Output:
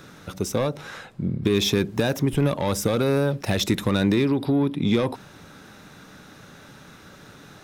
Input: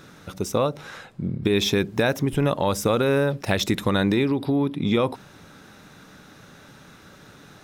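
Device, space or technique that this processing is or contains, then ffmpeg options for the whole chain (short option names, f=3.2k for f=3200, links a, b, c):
one-band saturation: -filter_complex "[0:a]acrossover=split=330|3900[a][b][c];[b]asoftclip=type=tanh:threshold=-23dB[d];[a][d][c]amix=inputs=3:normalize=0,volume=1.5dB"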